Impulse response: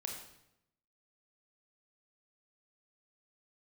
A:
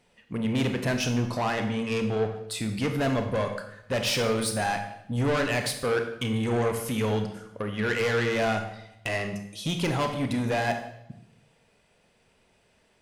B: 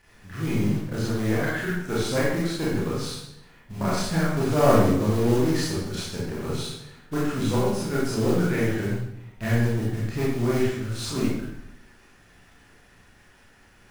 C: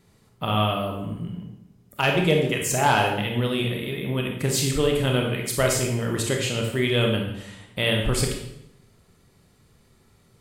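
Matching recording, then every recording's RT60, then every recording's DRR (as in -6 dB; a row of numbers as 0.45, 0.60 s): C; 0.80, 0.80, 0.80 s; 5.5, -7.5, 0.5 dB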